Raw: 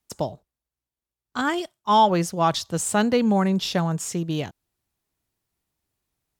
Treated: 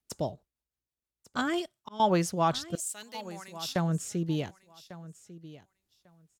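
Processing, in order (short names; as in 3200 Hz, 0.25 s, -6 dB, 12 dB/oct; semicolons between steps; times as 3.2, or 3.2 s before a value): rotary speaker horn 6.3 Hz, later 0.75 Hz, at 1.33; 1.38–2 auto swell 0.491 s; 2.75–3.76 differentiator; on a send: feedback echo 1.147 s, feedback 16%, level -17 dB; on the sum: gain -2.5 dB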